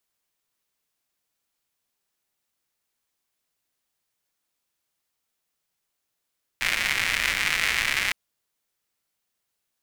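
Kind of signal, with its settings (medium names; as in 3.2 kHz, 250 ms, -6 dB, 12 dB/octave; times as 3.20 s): rain from filtered ticks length 1.51 s, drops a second 210, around 2.1 kHz, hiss -14.5 dB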